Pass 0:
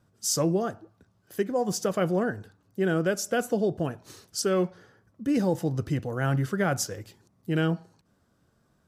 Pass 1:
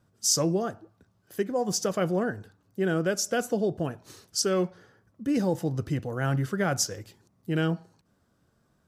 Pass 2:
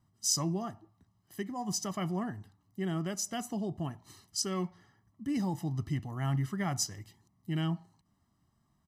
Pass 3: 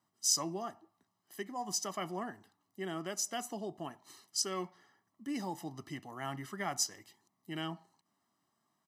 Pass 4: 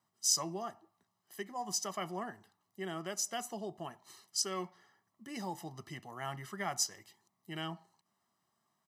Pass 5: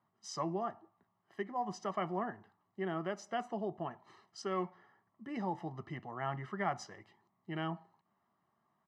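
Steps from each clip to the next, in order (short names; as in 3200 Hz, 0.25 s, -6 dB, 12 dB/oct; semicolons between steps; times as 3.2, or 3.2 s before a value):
dynamic EQ 5600 Hz, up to +6 dB, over -45 dBFS, Q 1.4; gain -1 dB
comb 1 ms, depth 88%; gain -8 dB
HPF 350 Hz 12 dB/oct
bell 280 Hz -13.5 dB 0.22 oct
LPF 1800 Hz 12 dB/oct; gain +3.5 dB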